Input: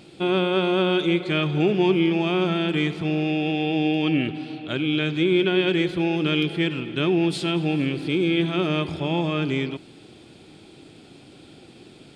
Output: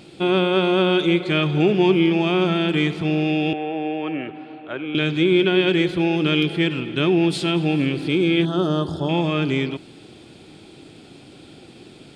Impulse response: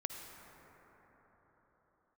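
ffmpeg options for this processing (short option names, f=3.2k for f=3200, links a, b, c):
-filter_complex "[0:a]asettb=1/sr,asplit=3[a][b][c];[a]atrim=end=3.534[d];[b]atrim=start=3.53:end=4.95,asetpts=PTS-STARTPTS,afade=t=in:d=0.004:c=qsin,afade=t=out:st=1.416:d=0.004:c=qsin,acrossover=split=390 2100:gain=0.178 1 0.0794[e][f][g];[e][f][g]amix=inputs=3:normalize=0[h];[c]atrim=start=4.946[i];[d][h]acrossfade=d=0.004:c1=hsin:c2=qsin[j];[j][i]acrossfade=d=0.004:c1=qsin:c2=hsin,asettb=1/sr,asplit=3[k][l][m];[k]atrim=end=8.454[n];[l]atrim=start=8.45:end=9.09,asetpts=PTS-STARTPTS,afade=t=in:d=0.004:c=qsin,afade=t=out:st=0.636:d=0.004:c=qsin,asuperstop=centerf=2300:order=4:qfactor=1.2[o];[m]atrim=start=9.086[p];[n][o]acrossfade=d=0.004:c1=hsin:c2=qsin[q];[q][p]acrossfade=d=0.004:c1=qsin:c2=hsin,volume=3dB"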